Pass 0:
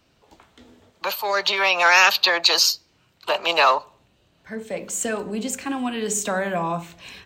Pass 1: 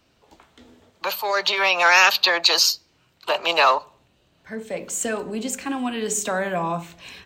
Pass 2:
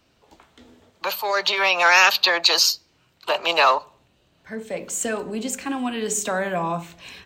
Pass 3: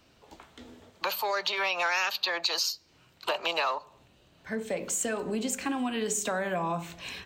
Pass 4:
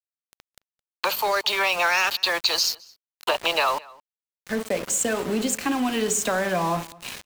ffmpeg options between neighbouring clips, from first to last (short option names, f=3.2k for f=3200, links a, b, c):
-af "bandreject=f=50:t=h:w=6,bandreject=f=100:t=h:w=6,bandreject=f=150:t=h:w=6,bandreject=f=200:t=h:w=6"
-af anull
-af "acompressor=threshold=-29dB:ratio=4,volume=1dB"
-filter_complex "[0:a]aeval=exprs='val(0)*gte(abs(val(0)),0.015)':c=same,asplit=2[a][b];[b]adelay=215.7,volume=-23dB,highshelf=f=4k:g=-4.85[c];[a][c]amix=inputs=2:normalize=0,volume=6.5dB"